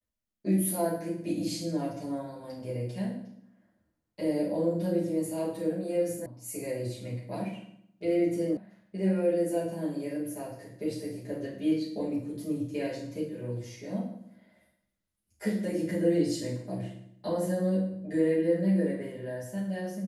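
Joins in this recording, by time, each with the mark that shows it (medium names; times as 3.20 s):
6.26 s: sound stops dead
8.57 s: sound stops dead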